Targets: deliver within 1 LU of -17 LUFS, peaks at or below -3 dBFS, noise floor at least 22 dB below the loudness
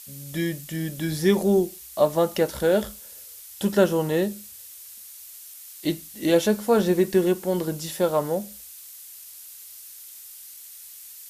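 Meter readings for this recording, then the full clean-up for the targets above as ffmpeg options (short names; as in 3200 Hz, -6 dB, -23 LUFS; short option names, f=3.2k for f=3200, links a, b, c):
noise floor -44 dBFS; noise floor target -46 dBFS; loudness -24.0 LUFS; peak -6.5 dBFS; loudness target -17.0 LUFS
-> -af "afftdn=nr=6:nf=-44"
-af "volume=7dB,alimiter=limit=-3dB:level=0:latency=1"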